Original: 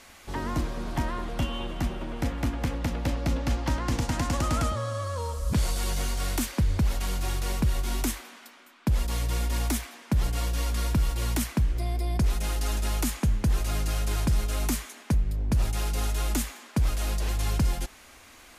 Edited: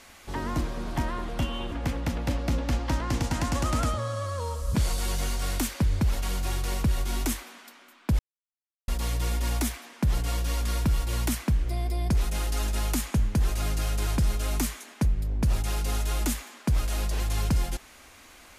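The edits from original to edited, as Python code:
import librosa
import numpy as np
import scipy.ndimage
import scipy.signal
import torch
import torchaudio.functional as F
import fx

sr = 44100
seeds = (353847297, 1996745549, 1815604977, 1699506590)

y = fx.edit(x, sr, fx.cut(start_s=1.72, length_s=0.78),
    fx.insert_silence(at_s=8.97, length_s=0.69), tone=tone)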